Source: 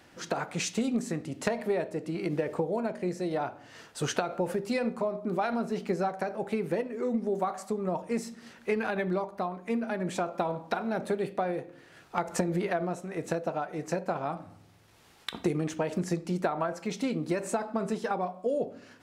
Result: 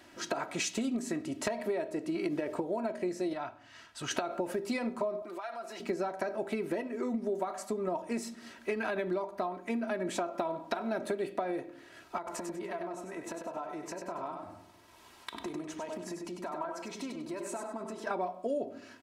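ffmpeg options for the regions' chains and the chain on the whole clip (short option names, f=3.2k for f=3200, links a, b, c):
-filter_complex "[0:a]asettb=1/sr,asplit=3[a][b][c];[a]atrim=end=3.334[d];[b]atrim=start=3.33:end=4.11,asetpts=PTS-STARTPTS,afade=t=in:d=0.004:c=qsin,afade=t=out:st=0.776:d=0.004:c=qsin,lowpass=f=3.5k:p=1,equalizer=f=420:w=0.7:g=-13[e];[c]atrim=start=4.106[f];[d][e]acrossfade=d=0.004:c1=hsin:c2=qsin[g];[g][f]acrossfade=d=0.004:c1=qsin:c2=hsin,asettb=1/sr,asplit=3[h][i][j];[h]atrim=end=5.224[k];[i]atrim=start=5.22:end=5.8,asetpts=PTS-STARTPTS,afade=t=in:d=0.004:c=qsin,afade=t=out:st=0.576:d=0.004:c=qsin,highpass=630,aecho=1:1:5.9:0.71,atrim=end_sample=25578,acompressor=threshold=-41dB:ratio=3:attack=3.2:release=140:knee=1:detection=peak[l];[j]atrim=start=5.796[m];[k][l]acrossfade=d=0.004:c1=hsin:c2=qsin[n];[n][m]acrossfade=d=0.004:c1=qsin:c2=hsin,asettb=1/sr,asplit=3[o][p][q];[o]atrim=end=12.174[r];[p]atrim=start=12.17:end=18.07,asetpts=PTS-STARTPTS,afade=t=in:d=0.004:c=qsin,afade=t=out:st=5.896:d=0.004:c=qsin,acompressor=threshold=-41dB:ratio=3:attack=3.2:release=140:knee=1:detection=peak,equalizer=f=1k:t=o:w=0.35:g=8,aecho=1:1:98|196|294:0.501|0.135|0.0365,atrim=end_sample=260190[s];[q]atrim=start=18.066[t];[r][s]acrossfade=d=0.004:c1=hsin:c2=qsin[u];[u][t]acrossfade=d=0.004:c1=qsin:c2=hsin,lowshelf=f=89:g=-7,aecho=1:1:3.1:0.57,acompressor=threshold=-29dB:ratio=6"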